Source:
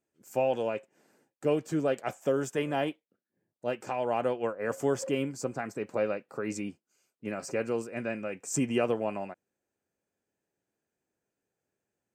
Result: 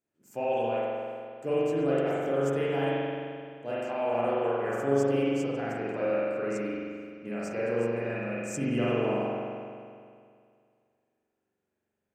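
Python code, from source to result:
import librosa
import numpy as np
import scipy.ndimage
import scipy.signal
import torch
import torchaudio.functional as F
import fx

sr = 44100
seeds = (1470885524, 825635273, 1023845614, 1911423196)

y = fx.rev_spring(x, sr, rt60_s=2.2, pass_ms=(43,), chirp_ms=55, drr_db=-8.0)
y = F.gain(torch.from_numpy(y), -6.5).numpy()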